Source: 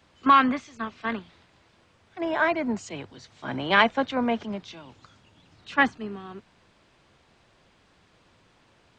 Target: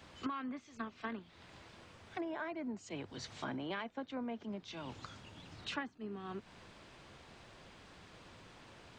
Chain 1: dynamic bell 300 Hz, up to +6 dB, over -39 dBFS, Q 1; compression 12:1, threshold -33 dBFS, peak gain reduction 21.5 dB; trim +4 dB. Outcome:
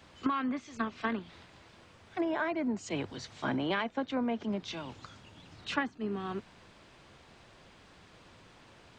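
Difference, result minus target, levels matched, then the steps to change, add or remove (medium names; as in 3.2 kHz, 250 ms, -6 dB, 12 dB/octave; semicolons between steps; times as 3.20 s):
compression: peak gain reduction -9 dB
change: compression 12:1, threshold -43 dBFS, peak gain reduction 30.5 dB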